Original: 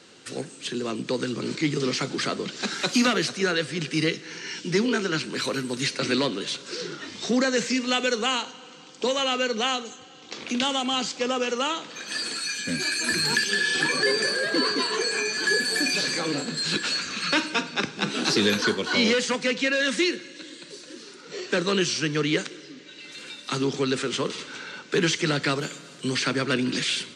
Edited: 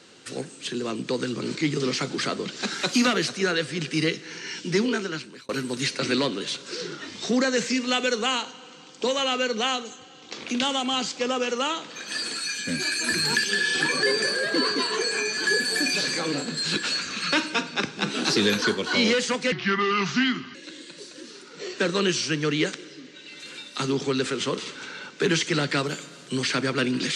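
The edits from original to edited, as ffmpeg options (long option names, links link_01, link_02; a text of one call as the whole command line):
ffmpeg -i in.wav -filter_complex "[0:a]asplit=4[link_01][link_02][link_03][link_04];[link_01]atrim=end=5.49,asetpts=PTS-STARTPTS,afade=type=out:start_time=4.84:duration=0.65[link_05];[link_02]atrim=start=5.49:end=19.524,asetpts=PTS-STARTPTS,afade=type=in:duration=0.004:curve=hsin[link_06];[link_03]atrim=start=19.52:end=20.27,asetpts=PTS-STARTPTS,asetrate=32193,aresample=44100,atrim=end_sample=45308,asetpts=PTS-STARTPTS[link_07];[link_04]atrim=start=20.266[link_08];[link_05][link_06]concat=n=2:v=0:a=1[link_09];[link_09][link_07]acrossfade=duration=0.004:curve1=hsin:curve2=hsin[link_10];[link_10][link_08]acrossfade=duration=0.004:curve1=hsin:curve2=hsin" out.wav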